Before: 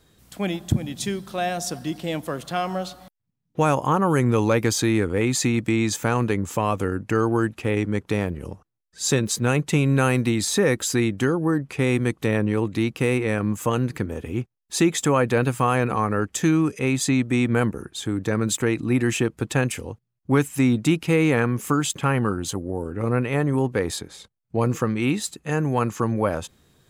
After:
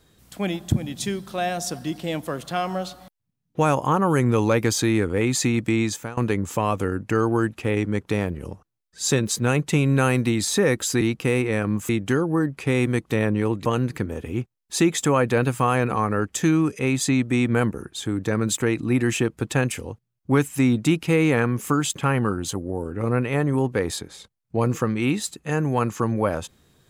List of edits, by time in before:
0:05.81–0:06.17: fade out, to −22.5 dB
0:12.77–0:13.65: move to 0:11.01

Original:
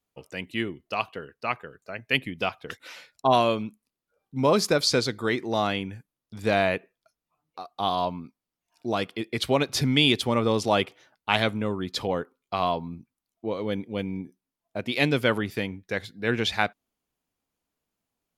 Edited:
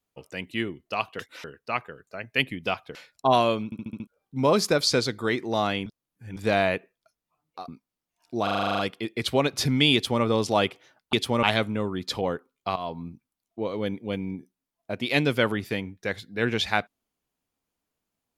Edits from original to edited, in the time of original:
0:02.70–0:02.95: move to 0:01.19
0:03.65: stutter in place 0.07 s, 6 plays
0:05.86–0:06.36: reverse
0:07.68–0:08.20: remove
0:08.95: stutter 0.04 s, 10 plays
0:10.10–0:10.40: duplicate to 0:11.29
0:12.62–0:12.89: fade in, from −14 dB

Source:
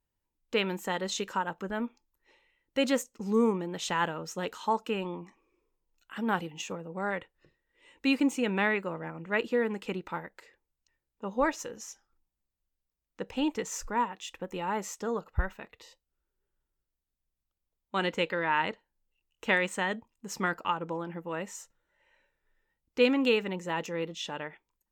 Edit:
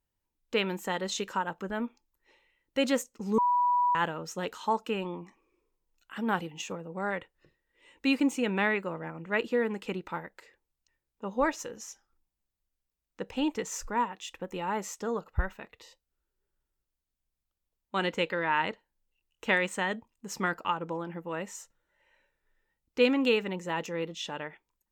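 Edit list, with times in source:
0:03.38–0:03.95: beep over 979 Hz −22 dBFS

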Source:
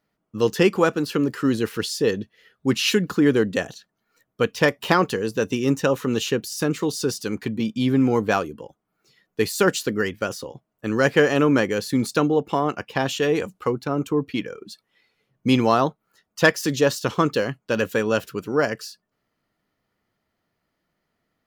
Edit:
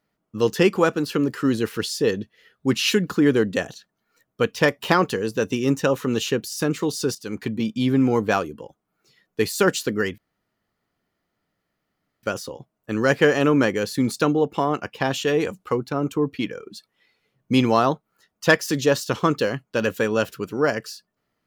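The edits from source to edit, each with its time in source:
0:07.15–0:07.42: fade in, from −12.5 dB
0:10.18: splice in room tone 2.05 s

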